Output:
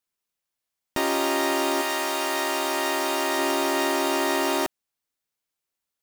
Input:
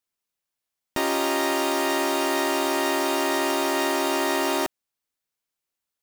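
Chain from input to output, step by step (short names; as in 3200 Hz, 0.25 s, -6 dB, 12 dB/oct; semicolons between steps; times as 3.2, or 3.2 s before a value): 1.81–3.37 HPF 760 Hz -> 330 Hz 6 dB/oct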